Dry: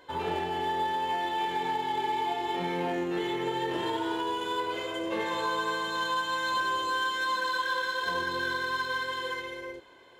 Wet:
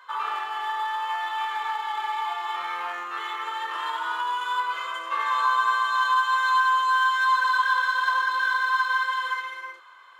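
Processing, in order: resonant high-pass 1.2 kHz, resonance Q 11

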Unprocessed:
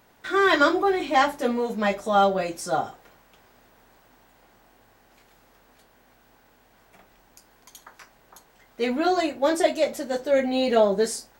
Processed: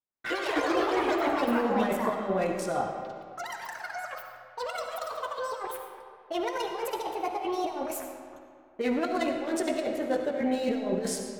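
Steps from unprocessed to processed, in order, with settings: local Wiener filter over 9 samples; compressor with a negative ratio -25 dBFS, ratio -0.5; gate -47 dBFS, range -44 dB; ever faster or slower copies 89 ms, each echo +6 st, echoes 3; algorithmic reverb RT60 2.2 s, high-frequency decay 0.65×, pre-delay 30 ms, DRR 4 dB; trim -4 dB

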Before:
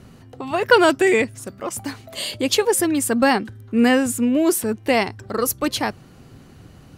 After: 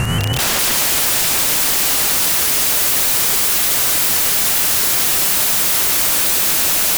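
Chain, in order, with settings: spectrogram pixelated in time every 200 ms; in parallel at -7 dB: integer overflow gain 19 dB; on the sum: graphic EQ 125/250/500/1000/2000/4000/8000 Hz +6/-8/-3/+3/+7/-12/+7 dB; whistle 2.9 kHz -52 dBFS; echo with a slow build-up 100 ms, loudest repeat 8, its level -5.5 dB; compression 6:1, threshold -27 dBFS, peak gain reduction 13 dB; integer overflow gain 32.5 dB; treble shelf 9.8 kHz +5 dB; loudness maximiser +34 dB; vibrato with a chosen wave saw up 5.4 Hz, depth 100 cents; trim -7.5 dB

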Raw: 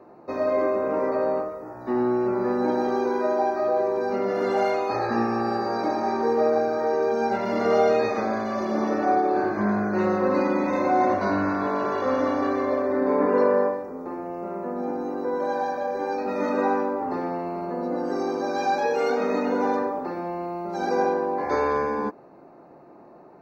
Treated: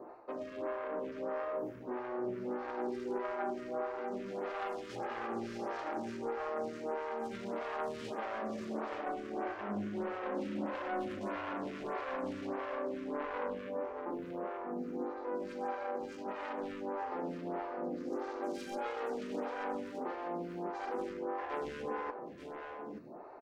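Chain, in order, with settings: self-modulated delay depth 0.43 ms; reverse; compression 5:1, threshold -36 dBFS, peak gain reduction 17 dB; reverse; delay 882 ms -8 dB; lamp-driven phase shifter 1.6 Hz; trim +1 dB

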